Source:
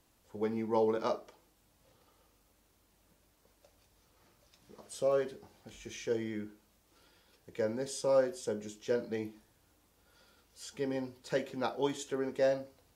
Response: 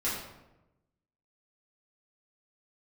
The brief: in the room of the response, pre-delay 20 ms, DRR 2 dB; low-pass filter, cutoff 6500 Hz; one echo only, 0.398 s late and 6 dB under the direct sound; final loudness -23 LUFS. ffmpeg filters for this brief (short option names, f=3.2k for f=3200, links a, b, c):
-filter_complex "[0:a]lowpass=6.5k,aecho=1:1:398:0.501,asplit=2[a][b];[1:a]atrim=start_sample=2205,adelay=20[c];[b][c]afir=irnorm=-1:irlink=0,volume=-9.5dB[d];[a][d]amix=inputs=2:normalize=0,volume=9.5dB"